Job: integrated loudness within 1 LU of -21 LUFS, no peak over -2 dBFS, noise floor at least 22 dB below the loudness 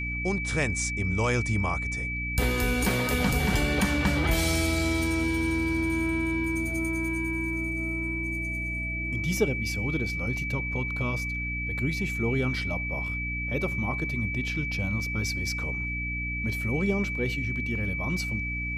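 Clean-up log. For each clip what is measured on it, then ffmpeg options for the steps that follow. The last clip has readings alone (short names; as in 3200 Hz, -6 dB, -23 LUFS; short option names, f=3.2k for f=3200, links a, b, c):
hum 60 Hz; harmonics up to 300 Hz; hum level -32 dBFS; steady tone 2300 Hz; tone level -31 dBFS; loudness -27.5 LUFS; peak -11.5 dBFS; loudness target -21.0 LUFS
-> -af "bandreject=f=60:t=h:w=4,bandreject=f=120:t=h:w=4,bandreject=f=180:t=h:w=4,bandreject=f=240:t=h:w=4,bandreject=f=300:t=h:w=4"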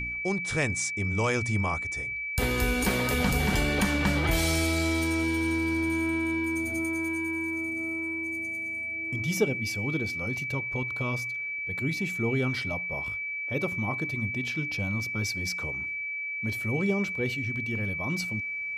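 hum none; steady tone 2300 Hz; tone level -31 dBFS
-> -af "bandreject=f=2.3k:w=30"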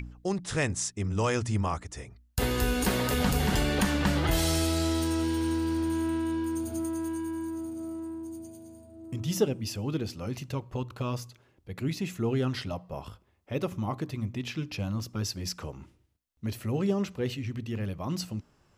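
steady tone none; loudness -30.5 LUFS; peak -12.0 dBFS; loudness target -21.0 LUFS
-> -af "volume=9.5dB"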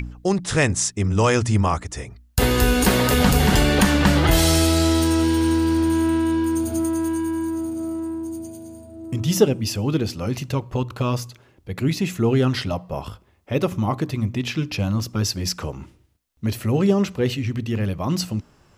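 loudness -21.0 LUFS; peak -2.5 dBFS; noise floor -56 dBFS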